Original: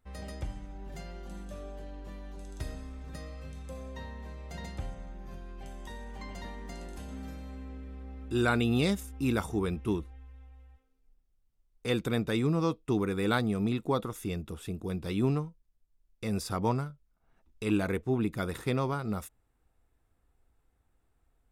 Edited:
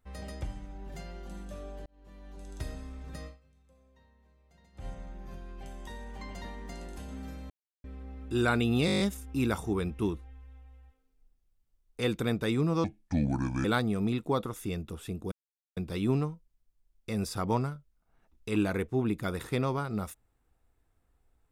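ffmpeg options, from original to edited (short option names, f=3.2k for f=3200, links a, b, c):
-filter_complex "[0:a]asplit=16[a][b][c][d][e][f][g][h][i][j][k][l][m][n][o][p];[a]atrim=end=1.86,asetpts=PTS-STARTPTS,afade=t=out:st=1.856:d=0.004:c=hsin[q];[b]atrim=start=1.86:end=3.42,asetpts=PTS-STARTPTS,afade=t=in:d=0.68,afade=t=out:st=1.4:d=0.16:c=qua:silence=0.0841395[r];[c]atrim=start=3.42:end=4.71,asetpts=PTS-STARTPTS,volume=-21.5dB[s];[d]atrim=start=4.71:end=7.5,asetpts=PTS-STARTPTS,afade=t=in:d=0.16:c=qua:silence=0.0841395,afade=t=out:st=2.786:d=0.004:c=hsin[t];[e]atrim=start=7.5:end=7.84,asetpts=PTS-STARTPTS,volume=0[u];[f]atrim=start=7.84:end=8.882,asetpts=PTS-STARTPTS,afade=t=in:d=0.004:c=hsin[v];[g]atrim=start=8.858:end=8.882[w];[h]atrim=start=8.858:end=8.882[x];[i]atrim=start=8.858:end=8.882[y];[j]atrim=start=8.858:end=8.882[z];[k]atrim=start=8.858:end=8.882[aa];[l]atrim=start=8.858:end=8.882[ab];[m]atrim=start=8.858:end=12.704[ac];[n]atrim=start=12.7:end=13.24,asetpts=PTS-STARTPTS,asetrate=29547,aresample=44100,atrim=end_sample=35543,asetpts=PTS-STARTPTS[ad];[o]atrim=start=13.236:end=14.91,asetpts=PTS-STARTPTS,afade=t=out:st=1.67:d=0.004:c=hsin,apad=pad_dur=0.45[ae];[p]atrim=start=14.91,asetpts=PTS-STARTPTS,afade=t=in:d=0.004:c=hsin[af];[q][r][s][t][u][v]concat=n=6:v=0:a=1[ag];[ag][w]acrossfade=d=0.004:c1=hsin:c2=hsin[ah];[ah][x]acrossfade=d=0.004:c1=hsin:c2=hsin[ai];[ai][y]acrossfade=d=0.004:c1=hsin:c2=hsin[aj];[aj][z]acrossfade=d=0.004:c1=hsin:c2=hsin[ak];[ak][aa]acrossfade=d=0.004:c1=hsin:c2=hsin[al];[al][ab]acrossfade=d=0.004:c1=hsin:c2=hsin[am];[am][ac]acrossfade=d=0.004:c1=hsin:c2=hsin[an];[an][ad]acrossfade=d=0.004:c1=hsin:c2=hsin[ao];[ae][af]concat=n=2:v=0:a=1[ap];[ao][ap]acrossfade=d=0.004:c1=hsin:c2=hsin"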